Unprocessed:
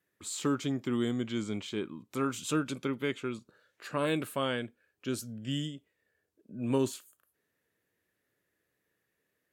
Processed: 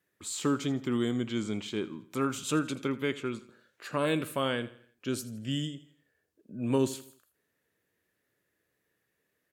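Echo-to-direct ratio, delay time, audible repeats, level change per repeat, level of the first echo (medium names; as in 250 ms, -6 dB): -16.0 dB, 82 ms, 3, -7.5 dB, -17.0 dB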